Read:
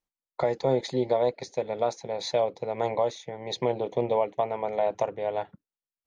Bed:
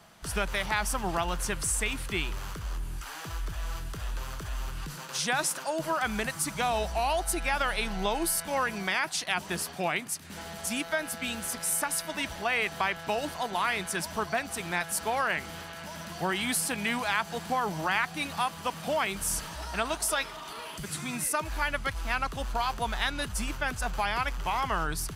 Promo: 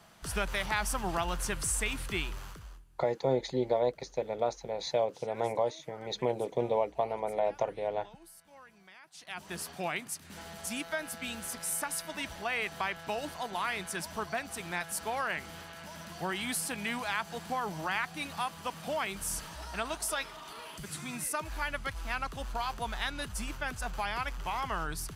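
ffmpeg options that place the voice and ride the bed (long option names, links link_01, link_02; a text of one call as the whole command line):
ffmpeg -i stem1.wav -i stem2.wav -filter_complex "[0:a]adelay=2600,volume=-4dB[link_01];[1:a]volume=18.5dB,afade=type=out:start_time=2.15:duration=0.7:silence=0.0668344,afade=type=in:start_time=9.11:duration=0.59:silence=0.0891251[link_02];[link_01][link_02]amix=inputs=2:normalize=0" out.wav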